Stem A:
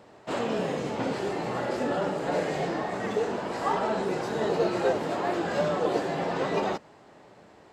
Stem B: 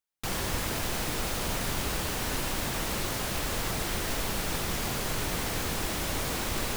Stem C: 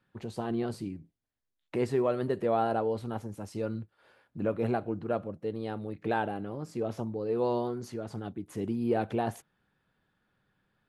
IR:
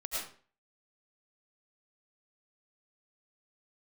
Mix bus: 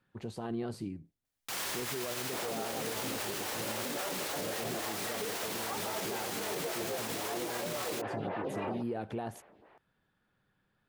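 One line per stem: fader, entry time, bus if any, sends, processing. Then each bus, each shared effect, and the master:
+1.0 dB, 2.05 s, no bus, no send, four-pole ladder low-pass 3.7 kHz, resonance 25%; lamp-driven phase shifter 3.7 Hz
+1.0 dB, 1.25 s, bus A, no send, level rider gain up to 4 dB; high-pass 970 Hz 6 dB/octave
-1.5 dB, 0.00 s, bus A, no send, none
bus A: 0.0 dB, compression, threshold -31 dBFS, peak gain reduction 8.5 dB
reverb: none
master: peak limiter -27 dBFS, peak gain reduction 10 dB

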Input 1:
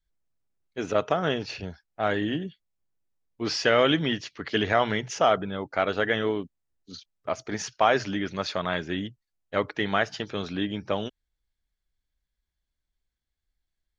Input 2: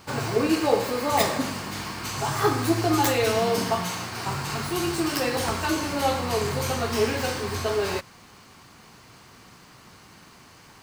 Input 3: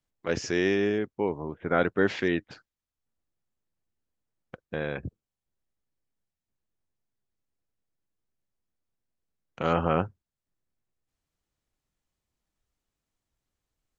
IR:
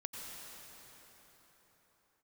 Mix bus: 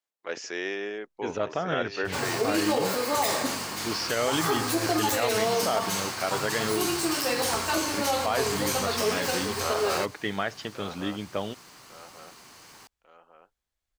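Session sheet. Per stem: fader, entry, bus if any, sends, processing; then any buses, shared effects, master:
-3.0 dB, 0.45 s, no send, no echo send, none
-0.5 dB, 2.05 s, no send, no echo send, tone controls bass -8 dB, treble +5 dB
-2.5 dB, 0.00 s, no send, echo send -11.5 dB, high-pass 500 Hz 12 dB/octave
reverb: none
echo: feedback delay 1146 ms, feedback 44%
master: peak limiter -15.5 dBFS, peak gain reduction 8.5 dB

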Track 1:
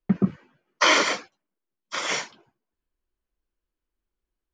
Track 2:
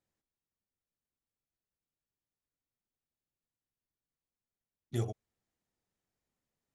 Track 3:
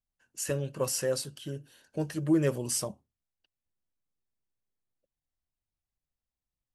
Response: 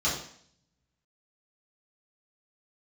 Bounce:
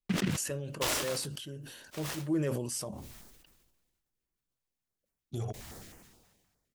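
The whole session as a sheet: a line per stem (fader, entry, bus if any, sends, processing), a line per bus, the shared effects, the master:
-10.5 dB, 0.00 s, no send, delay time shaken by noise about 2 kHz, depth 0.17 ms; auto duck -8 dB, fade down 1.95 s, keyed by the third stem
+2.0 dB, 0.40 s, no send, peak limiter -28.5 dBFS, peak gain reduction 7.5 dB; step-sequenced notch 9.6 Hz 300–3900 Hz
-6.5 dB, 0.00 s, no send, none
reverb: none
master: decay stretcher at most 39 dB/s

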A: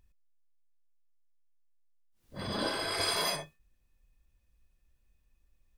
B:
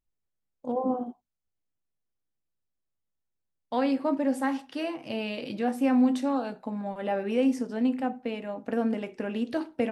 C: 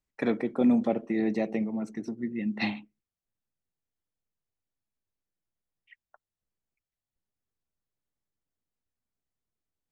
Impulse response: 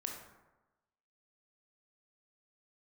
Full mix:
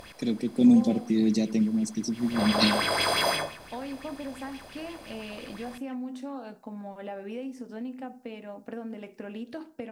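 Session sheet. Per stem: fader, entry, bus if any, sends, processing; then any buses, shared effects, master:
-3.0 dB, 0.00 s, send -13.5 dB, spectral levelling over time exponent 0.4; sweeping bell 5.8 Hz 590–3000 Hz +13 dB
-6.0 dB, 0.00 s, send -22.5 dB, compression, threshold -28 dBFS, peak gain reduction 9.5 dB
+1.0 dB, 0.00 s, no send, FFT filter 230 Hz 0 dB, 1.4 kHz -23 dB, 4.9 kHz +13 dB; level rider gain up to 5 dB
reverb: on, RT60 1.1 s, pre-delay 17 ms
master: none

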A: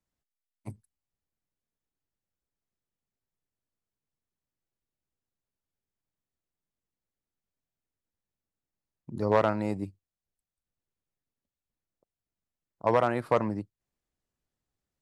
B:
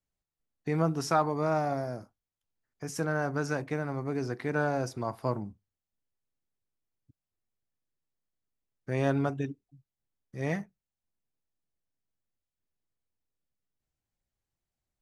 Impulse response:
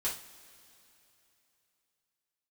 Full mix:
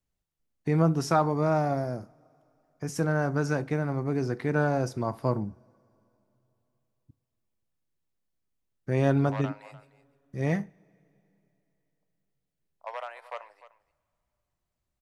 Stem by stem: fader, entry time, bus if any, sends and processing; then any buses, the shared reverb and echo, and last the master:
-12.0 dB, 0.00 s, send -21.5 dB, echo send -16 dB, steep high-pass 580 Hz 36 dB/octave; peaking EQ 2.7 kHz +6.5 dB 1.1 oct
0.0 dB, 0.00 s, send -19 dB, no echo send, bass shelf 460 Hz +5.5 dB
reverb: on, pre-delay 3 ms
echo: delay 300 ms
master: none

